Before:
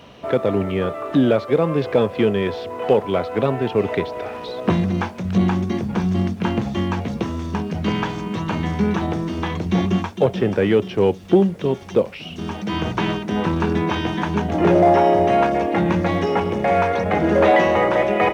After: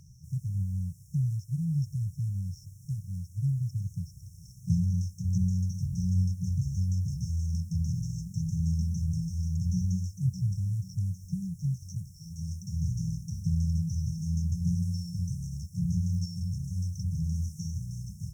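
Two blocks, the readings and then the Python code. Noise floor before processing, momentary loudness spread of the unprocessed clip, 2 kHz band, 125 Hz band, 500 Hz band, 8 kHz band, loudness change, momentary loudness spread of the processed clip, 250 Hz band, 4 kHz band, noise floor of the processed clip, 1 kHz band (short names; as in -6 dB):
-35 dBFS, 9 LU, under -40 dB, -2.5 dB, under -40 dB, n/a, -11.5 dB, 9 LU, -14.5 dB, -19.0 dB, -51 dBFS, under -40 dB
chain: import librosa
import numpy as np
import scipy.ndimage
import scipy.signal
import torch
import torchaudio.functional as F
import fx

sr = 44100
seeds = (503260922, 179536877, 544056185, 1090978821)

y = fx.brickwall_bandstop(x, sr, low_hz=170.0, high_hz=5300.0)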